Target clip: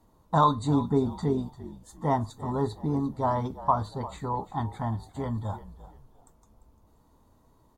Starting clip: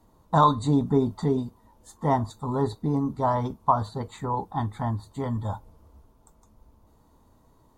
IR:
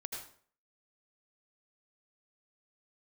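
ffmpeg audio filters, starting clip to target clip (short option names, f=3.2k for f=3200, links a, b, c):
-filter_complex "[0:a]asplit=4[a][b][c][d];[b]adelay=346,afreqshift=-50,volume=-15.5dB[e];[c]adelay=692,afreqshift=-100,volume=-25.4dB[f];[d]adelay=1038,afreqshift=-150,volume=-35.3dB[g];[a][e][f][g]amix=inputs=4:normalize=0,volume=-2.5dB"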